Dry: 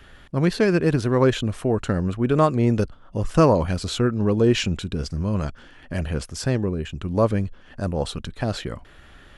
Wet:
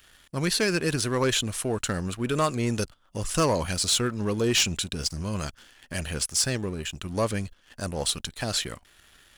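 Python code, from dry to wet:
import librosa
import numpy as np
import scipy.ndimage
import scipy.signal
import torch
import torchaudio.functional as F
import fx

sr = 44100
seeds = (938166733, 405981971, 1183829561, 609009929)

y = scipy.signal.lfilter([1.0, -0.9], [1.0], x)
y = fx.leveller(y, sr, passes=2)
y = F.gain(torch.from_numpy(y), 5.0).numpy()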